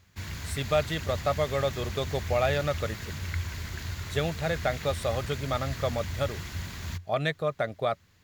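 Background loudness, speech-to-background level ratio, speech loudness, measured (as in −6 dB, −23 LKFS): −36.5 LKFS, 6.0 dB, −30.5 LKFS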